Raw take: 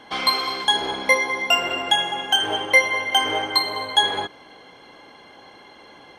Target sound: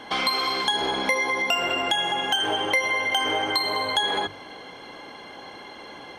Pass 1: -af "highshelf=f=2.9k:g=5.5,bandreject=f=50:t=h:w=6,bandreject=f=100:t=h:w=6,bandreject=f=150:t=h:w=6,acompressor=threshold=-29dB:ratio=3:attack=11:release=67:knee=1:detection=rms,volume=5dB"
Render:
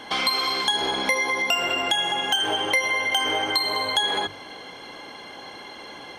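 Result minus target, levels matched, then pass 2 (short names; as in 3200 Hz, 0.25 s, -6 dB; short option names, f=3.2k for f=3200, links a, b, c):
8000 Hz band +2.5 dB
-af "bandreject=f=50:t=h:w=6,bandreject=f=100:t=h:w=6,bandreject=f=150:t=h:w=6,acompressor=threshold=-29dB:ratio=3:attack=11:release=67:knee=1:detection=rms,volume=5dB"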